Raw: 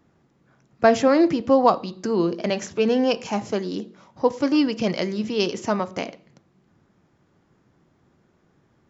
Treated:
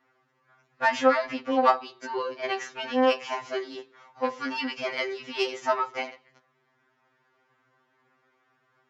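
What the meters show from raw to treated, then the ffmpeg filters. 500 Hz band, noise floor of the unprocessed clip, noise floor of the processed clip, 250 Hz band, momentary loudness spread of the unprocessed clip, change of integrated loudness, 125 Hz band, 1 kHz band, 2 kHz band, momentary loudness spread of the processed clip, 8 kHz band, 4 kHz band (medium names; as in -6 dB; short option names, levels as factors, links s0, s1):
-6.0 dB, -64 dBFS, -71 dBFS, -11.5 dB, 11 LU, -5.5 dB, under -20 dB, -1.0 dB, +1.5 dB, 11 LU, no reading, -3.0 dB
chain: -af "aeval=exprs='0.75*(cos(1*acos(clip(val(0)/0.75,-1,1)))-cos(1*PI/2))+0.0299*(cos(8*acos(clip(val(0)/0.75,-1,1)))-cos(8*PI/2))':c=same,bandpass=f=1700:t=q:w=0.96:csg=0,afftfilt=real='re*2.45*eq(mod(b,6),0)':imag='im*2.45*eq(mod(b,6),0)':win_size=2048:overlap=0.75,volume=2"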